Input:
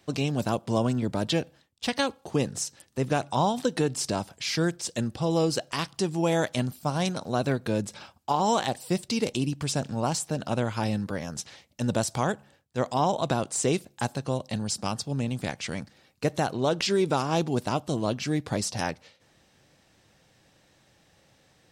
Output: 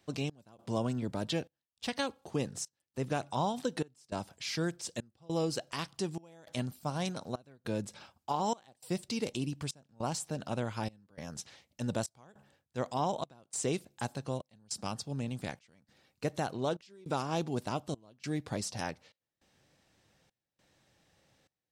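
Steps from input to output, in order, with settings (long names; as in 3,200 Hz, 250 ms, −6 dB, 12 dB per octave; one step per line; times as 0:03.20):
gate pattern "xx..xxxx" 102 BPM −24 dB
level −7.5 dB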